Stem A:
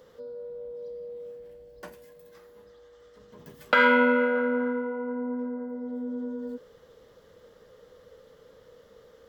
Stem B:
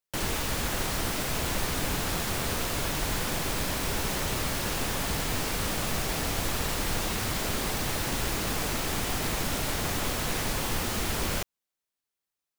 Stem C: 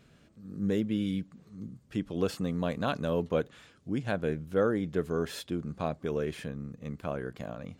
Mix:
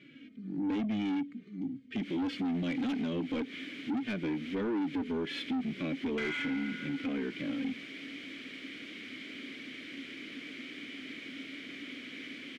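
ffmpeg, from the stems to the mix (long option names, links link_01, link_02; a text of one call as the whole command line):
ffmpeg -i stem1.wav -i stem2.wav -i stem3.wav -filter_complex "[0:a]highpass=frequency=1000:width=0.5412,highpass=frequency=1000:width=1.3066,adelay=2450,volume=-10.5dB[link_01];[1:a]adelay=1850,volume=-14.5dB[link_02];[2:a]acontrast=80,lowshelf=frequency=190:gain=6,asplit=2[link_03][link_04];[link_04]adelay=3,afreqshift=-1.9[link_05];[link_03][link_05]amix=inputs=2:normalize=1,volume=-0.5dB,asplit=2[link_06][link_07];[link_07]apad=whole_len=636485[link_08];[link_02][link_08]sidechaincompress=threshold=-28dB:ratio=8:attack=9.5:release=175[link_09];[link_01][link_09][link_06]amix=inputs=3:normalize=0,asplit=3[link_10][link_11][link_12];[link_10]bandpass=frequency=270:width_type=q:width=8,volume=0dB[link_13];[link_11]bandpass=frequency=2290:width_type=q:width=8,volume=-6dB[link_14];[link_12]bandpass=frequency=3010:width_type=q:width=8,volume=-9dB[link_15];[link_13][link_14][link_15]amix=inputs=3:normalize=0,asplit=2[link_16][link_17];[link_17]highpass=frequency=720:poles=1,volume=27dB,asoftclip=type=tanh:threshold=-20dB[link_18];[link_16][link_18]amix=inputs=2:normalize=0,lowpass=frequency=2100:poles=1,volume=-6dB,alimiter=level_in=3.5dB:limit=-24dB:level=0:latency=1:release=141,volume=-3.5dB" out.wav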